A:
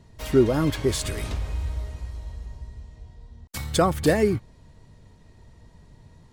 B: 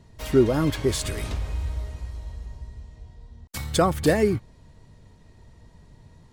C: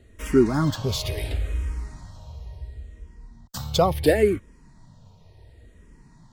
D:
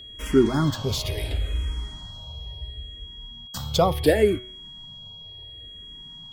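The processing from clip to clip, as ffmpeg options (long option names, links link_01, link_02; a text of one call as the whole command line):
ffmpeg -i in.wav -af anull out.wav
ffmpeg -i in.wav -filter_complex "[0:a]asplit=2[link_01][link_02];[link_02]afreqshift=-0.71[link_03];[link_01][link_03]amix=inputs=2:normalize=1,volume=3dB" out.wav
ffmpeg -i in.wav -af "bandreject=frequency=123.5:width_type=h:width=4,bandreject=frequency=247:width_type=h:width=4,bandreject=frequency=370.5:width_type=h:width=4,bandreject=frequency=494:width_type=h:width=4,bandreject=frequency=617.5:width_type=h:width=4,bandreject=frequency=741:width_type=h:width=4,bandreject=frequency=864.5:width_type=h:width=4,bandreject=frequency=988:width_type=h:width=4,bandreject=frequency=1111.5:width_type=h:width=4,bandreject=frequency=1235:width_type=h:width=4,bandreject=frequency=1358.5:width_type=h:width=4,bandreject=frequency=1482:width_type=h:width=4,bandreject=frequency=1605.5:width_type=h:width=4,bandreject=frequency=1729:width_type=h:width=4,bandreject=frequency=1852.5:width_type=h:width=4,bandreject=frequency=1976:width_type=h:width=4,bandreject=frequency=2099.5:width_type=h:width=4,bandreject=frequency=2223:width_type=h:width=4,bandreject=frequency=2346.5:width_type=h:width=4,bandreject=frequency=2470:width_type=h:width=4,bandreject=frequency=2593.5:width_type=h:width=4,bandreject=frequency=2717:width_type=h:width=4,bandreject=frequency=2840.5:width_type=h:width=4,bandreject=frequency=2964:width_type=h:width=4,bandreject=frequency=3087.5:width_type=h:width=4,bandreject=frequency=3211:width_type=h:width=4,bandreject=frequency=3334.5:width_type=h:width=4,bandreject=frequency=3458:width_type=h:width=4,aeval=exprs='val(0)+0.01*sin(2*PI*3300*n/s)':channel_layout=same" out.wav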